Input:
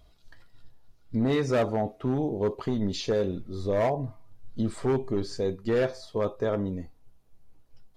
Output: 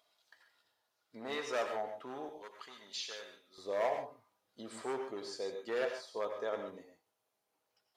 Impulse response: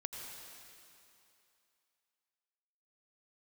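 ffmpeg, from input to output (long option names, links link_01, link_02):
-filter_complex "[0:a]asetnsamples=nb_out_samples=441:pad=0,asendcmd='2.29 highpass f 1500;3.58 highpass f 580',highpass=690[link_01];[1:a]atrim=start_sample=2205,afade=type=out:start_time=0.2:duration=0.01,atrim=end_sample=9261[link_02];[link_01][link_02]afir=irnorm=-1:irlink=0,volume=-2dB"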